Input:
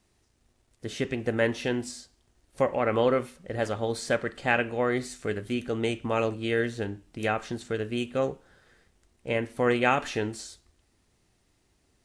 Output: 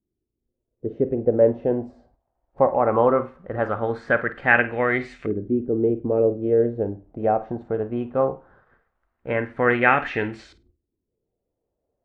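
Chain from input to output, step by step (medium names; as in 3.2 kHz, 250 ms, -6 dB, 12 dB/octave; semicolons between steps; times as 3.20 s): gate -59 dBFS, range -8 dB; LFO low-pass saw up 0.19 Hz 320–2400 Hz; on a send: flutter echo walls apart 8.7 m, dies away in 0.21 s; on the sum: spectral noise reduction 9 dB; trim +3 dB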